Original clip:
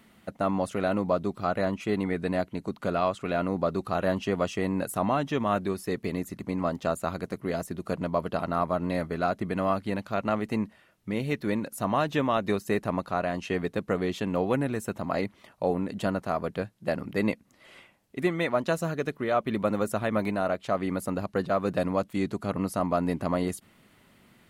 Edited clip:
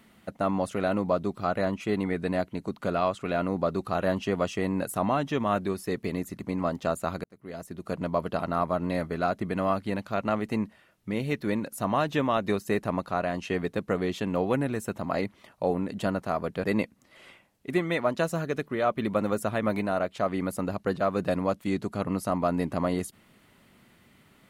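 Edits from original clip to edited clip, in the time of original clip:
7.24–8.07 s: fade in
16.64–17.13 s: delete

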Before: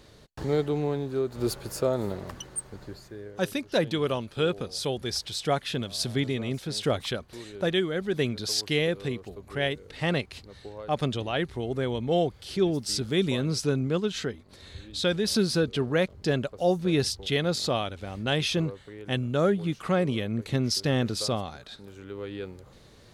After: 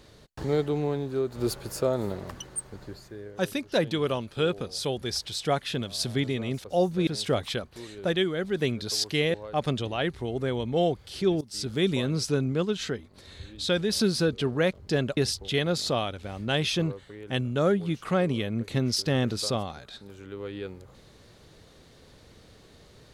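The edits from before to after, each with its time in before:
8.91–10.69 s: delete
12.76–13.09 s: fade in, from -20 dB
16.52–16.95 s: move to 6.64 s

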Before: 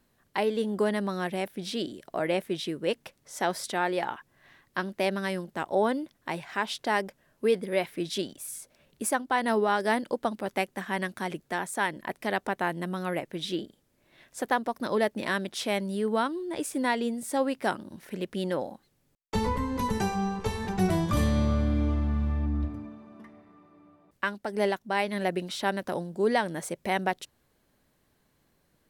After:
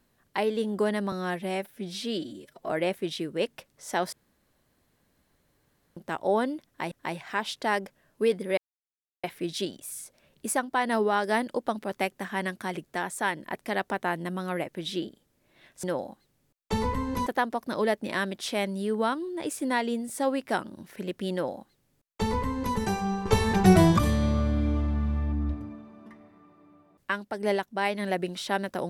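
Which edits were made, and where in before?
1.12–2.17 s: stretch 1.5×
3.60–5.44 s: room tone
6.14–6.39 s: loop, 2 plays
7.80 s: insert silence 0.66 s
18.46–19.89 s: copy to 14.40 s
20.39–21.12 s: gain +8 dB

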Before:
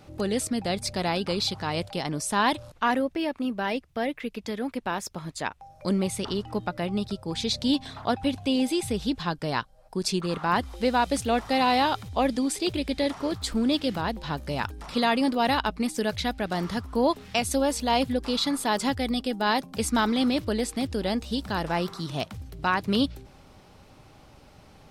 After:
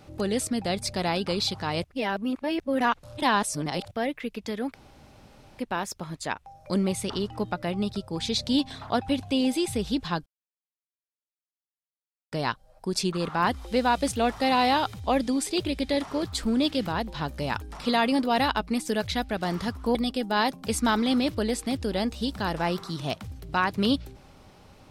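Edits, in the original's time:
1.84–3.91 s: reverse
4.74 s: insert room tone 0.85 s
9.41 s: insert silence 2.06 s
17.04–19.05 s: delete

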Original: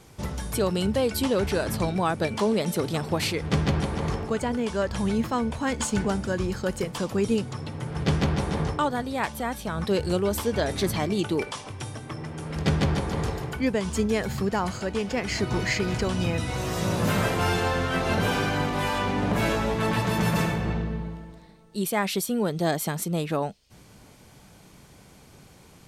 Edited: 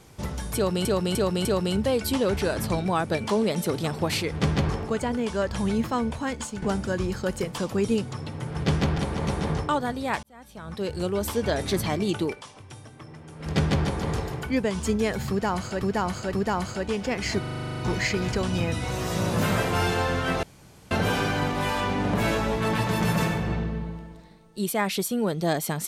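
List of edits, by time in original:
0.55–0.85 s: loop, 4 plays
3.79–4.09 s: move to 8.38 s
5.50–6.02 s: fade out, to -12 dB
9.33–10.49 s: fade in linear
11.33–12.61 s: dip -8.5 dB, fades 0.13 s
14.39–14.91 s: loop, 3 plays
15.45 s: stutter 0.04 s, 11 plays
18.09 s: insert room tone 0.48 s

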